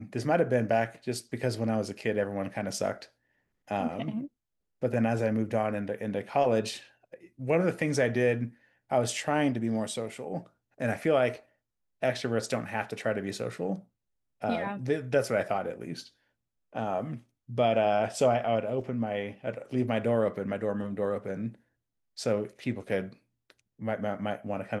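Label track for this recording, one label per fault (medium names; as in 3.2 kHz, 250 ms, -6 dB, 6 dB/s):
18.810000	18.810000	dropout 3.5 ms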